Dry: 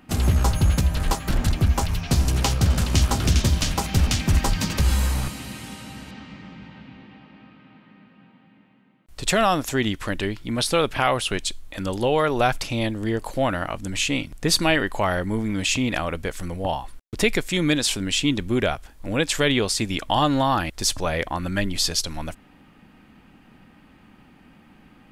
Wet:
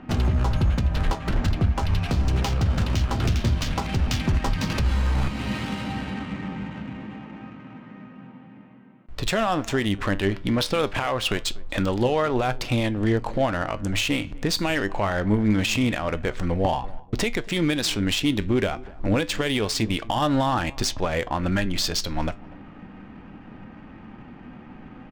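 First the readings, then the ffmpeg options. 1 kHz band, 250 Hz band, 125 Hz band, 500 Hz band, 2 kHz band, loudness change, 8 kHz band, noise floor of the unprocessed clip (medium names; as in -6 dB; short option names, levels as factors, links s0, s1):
-2.0 dB, +0.5 dB, -0.5 dB, -1.0 dB, -2.0 dB, -2.0 dB, -6.5 dB, -53 dBFS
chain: -filter_complex "[0:a]highshelf=f=8800:g=-5,asplit=2[s0][s1];[s1]acompressor=threshold=0.0224:ratio=6,volume=0.841[s2];[s0][s2]amix=inputs=2:normalize=0,alimiter=limit=0.141:level=0:latency=1:release=283,adynamicsmooth=sensitivity=7:basefreq=1900,flanger=delay=7.9:depth=2.4:regen=78:speed=0.24:shape=sinusoidal,asplit=2[s3][s4];[s4]adelay=244,lowpass=f=1100:p=1,volume=0.0944,asplit=2[s5][s6];[s6]adelay=244,lowpass=f=1100:p=1,volume=0.34,asplit=2[s7][s8];[s8]adelay=244,lowpass=f=1100:p=1,volume=0.34[s9];[s5][s7][s9]amix=inputs=3:normalize=0[s10];[s3][s10]amix=inputs=2:normalize=0,volume=2.66"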